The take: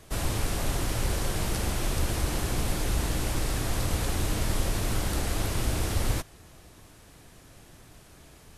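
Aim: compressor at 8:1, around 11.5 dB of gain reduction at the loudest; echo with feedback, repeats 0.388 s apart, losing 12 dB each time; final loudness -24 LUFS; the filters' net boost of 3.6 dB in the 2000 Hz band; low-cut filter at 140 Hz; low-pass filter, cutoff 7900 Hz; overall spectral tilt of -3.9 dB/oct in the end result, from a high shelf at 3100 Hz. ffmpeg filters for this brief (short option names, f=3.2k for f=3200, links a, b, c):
-af "highpass=140,lowpass=7.9k,equalizer=f=2k:t=o:g=5.5,highshelf=f=3.1k:g=-3,acompressor=threshold=-41dB:ratio=8,aecho=1:1:388|776|1164:0.251|0.0628|0.0157,volume=20.5dB"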